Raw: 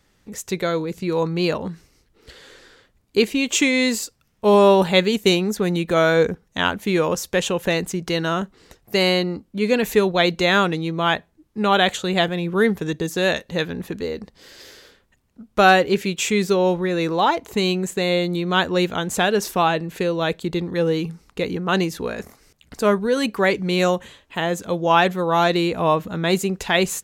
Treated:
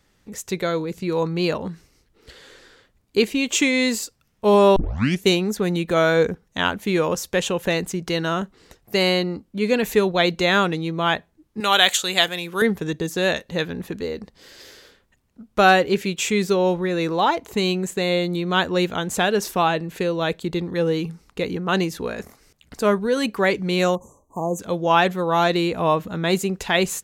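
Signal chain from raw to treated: 4.76 tape start 0.48 s; 11.6–12.62 tilt +4 dB/oct; 23.95–24.59 brick-wall FIR band-stop 1200–5800 Hz; gain -1 dB

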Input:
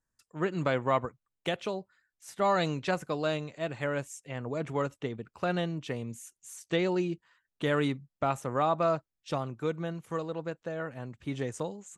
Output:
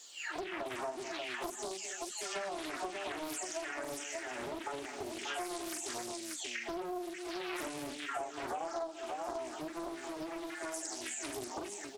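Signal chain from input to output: spectral delay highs early, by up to 0.802 s; fixed phaser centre 760 Hz, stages 8; notch comb 500 Hz; added noise pink -70 dBFS; HPF 310 Hz 24 dB/oct; band shelf 4900 Hz +14.5 dB; tapped delay 41/42/211/262/586 ms -13.5/-7.5/-14.5/-17/-7 dB; compressor 5:1, threshold -42 dBFS, peak gain reduction 15 dB; Doppler distortion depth 0.74 ms; gain +5 dB

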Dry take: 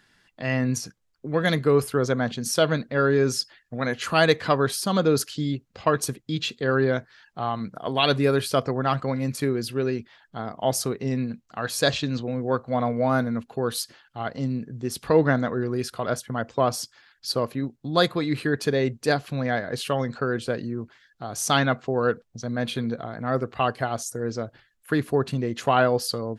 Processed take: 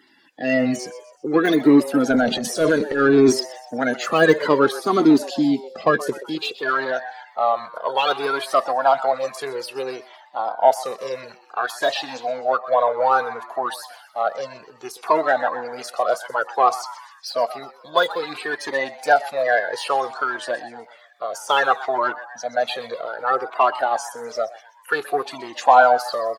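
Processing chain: bin magnitudes rounded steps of 30 dB; de-esser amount 75%; in parallel at -7 dB: soft clip -20 dBFS, distortion -11 dB; on the sum: high-pass sweep 290 Hz -> 680 Hz, 6.11–6.75; 2.1–3.4 transient shaper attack -9 dB, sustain +8 dB; on a send: frequency-shifting echo 0.126 s, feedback 46%, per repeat +120 Hz, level -16 dB; on the sum: cascading flanger falling 0.59 Hz; gain +6 dB

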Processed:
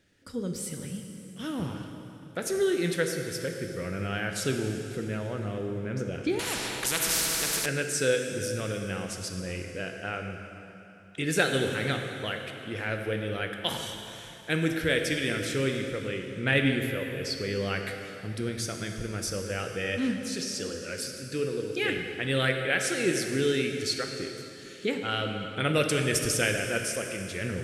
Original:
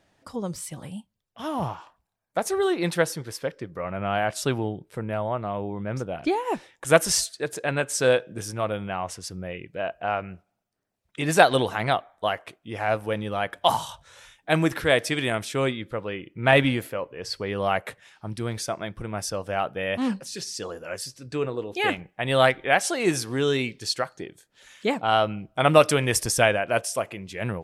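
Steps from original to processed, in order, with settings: band shelf 850 Hz -14 dB 1.1 oct; in parallel at 0 dB: compressor, threshold -31 dBFS, peak gain reduction 16 dB; on the sum: plate-style reverb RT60 3.1 s, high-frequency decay 0.9×, DRR 3.5 dB; 6.39–7.66 spectral compressor 4:1; gain -6.5 dB

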